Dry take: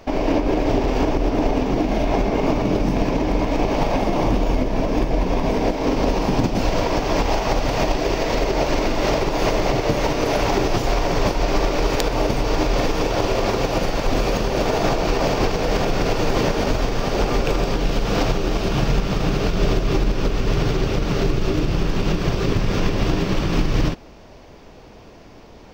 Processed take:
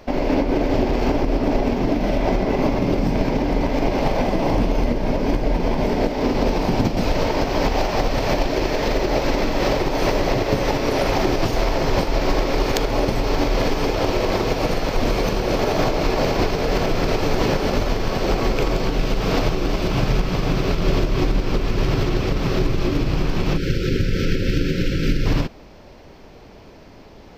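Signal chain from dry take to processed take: tape speed -6%; time-frequency box 23.57–25.26 s, 580–1300 Hz -30 dB

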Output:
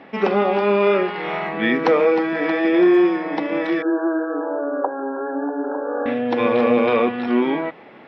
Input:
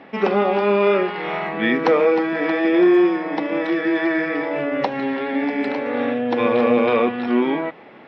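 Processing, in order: 3.82–6.06 s: brick-wall FIR band-pass 270–1700 Hz

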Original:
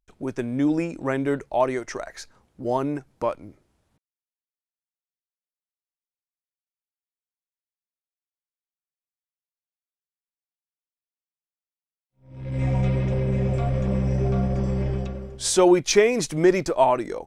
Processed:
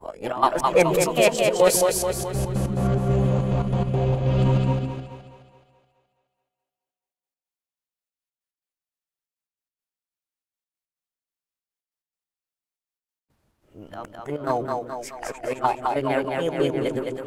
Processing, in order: reverse the whole clip; trance gate "x.x.xx.xxx." 141 bpm -12 dB; two-band feedback delay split 340 Hz, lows 144 ms, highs 212 ms, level -3 dB; formant shift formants +4 st

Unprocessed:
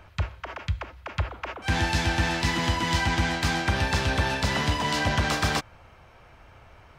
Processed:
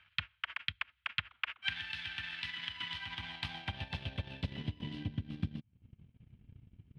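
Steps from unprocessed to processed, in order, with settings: FFT filter 120 Hz 0 dB, 230 Hz -10 dB, 460 Hz -28 dB, 1.3 kHz -21 dB, 3.2 kHz +7 dB, 7.1 kHz -10 dB, 10 kHz +3 dB; band-pass sweep 1.4 kHz -> 230 Hz, 2.70–5.60 s; treble shelf 3.3 kHz -7.5 dB; compression 10:1, threshold -47 dBFS, peak gain reduction 11.5 dB; transient shaper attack +11 dB, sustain -11 dB; trim +8 dB

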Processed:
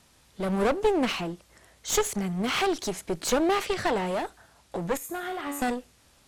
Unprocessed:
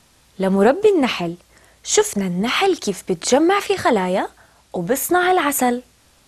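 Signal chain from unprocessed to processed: 3.65–4.06 s: low-pass 8.3 kHz; 4.97–5.62 s: feedback comb 95 Hz, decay 0.84 s, harmonics all, mix 80%; one-sided clip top -25 dBFS; trim -5.5 dB

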